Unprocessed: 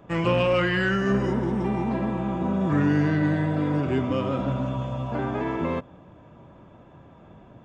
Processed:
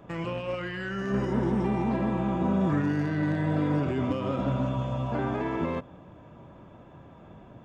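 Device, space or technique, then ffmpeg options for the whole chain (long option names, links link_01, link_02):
de-esser from a sidechain: -filter_complex "[0:a]asplit=2[link_01][link_02];[link_02]highpass=5100,apad=whole_len=337207[link_03];[link_01][link_03]sidechaincompress=threshold=-53dB:ratio=4:attack=0.63:release=64"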